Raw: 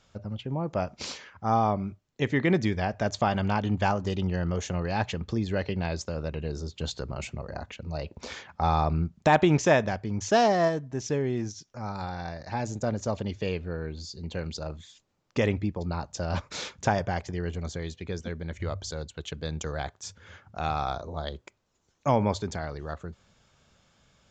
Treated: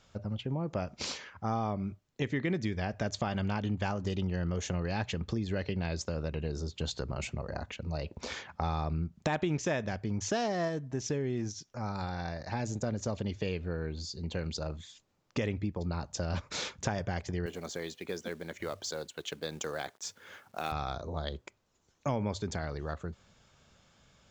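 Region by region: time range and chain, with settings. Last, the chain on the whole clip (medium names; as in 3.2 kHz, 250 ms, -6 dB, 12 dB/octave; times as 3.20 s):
17.46–20.72 s: high-pass 270 Hz + companded quantiser 6-bit
whole clip: dynamic bell 850 Hz, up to -5 dB, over -38 dBFS, Q 1.1; compression 3:1, threshold -30 dBFS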